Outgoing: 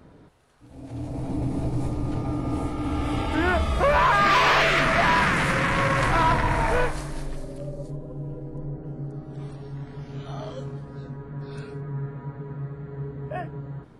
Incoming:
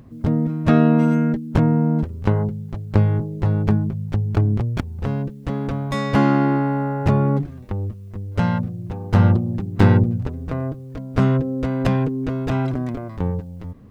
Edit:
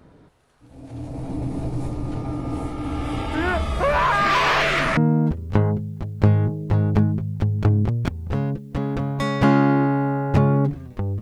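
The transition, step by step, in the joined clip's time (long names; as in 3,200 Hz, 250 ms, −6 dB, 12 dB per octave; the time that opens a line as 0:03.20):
outgoing
0:04.97: continue with incoming from 0:01.69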